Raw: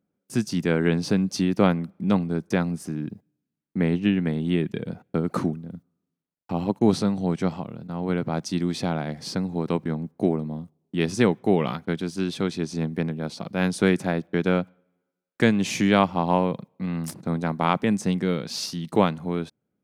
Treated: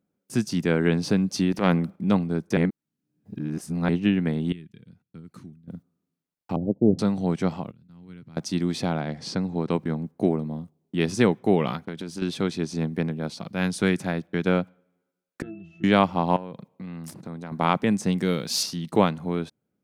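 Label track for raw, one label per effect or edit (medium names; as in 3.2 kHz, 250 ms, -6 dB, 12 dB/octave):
1.520000	1.960000	transient shaper attack -11 dB, sustain +6 dB
2.570000	3.890000	reverse
4.520000	5.680000	amplifier tone stack bass-middle-treble 6-0-2
6.560000	6.990000	steep low-pass 620 Hz 48 dB/octave
7.710000	8.370000	amplifier tone stack bass-middle-treble 6-0-2
9.000000	9.710000	low-pass 7.5 kHz
11.820000	12.220000	compression 10:1, threshold -28 dBFS
13.300000	14.470000	peaking EQ 500 Hz -4 dB 2.4 oct
15.420000	15.840000	pitch-class resonator E, decay 0.44 s
16.360000	17.520000	compression 3:1, threshold -36 dBFS
18.180000	18.630000	treble shelf 5.2 kHz +12 dB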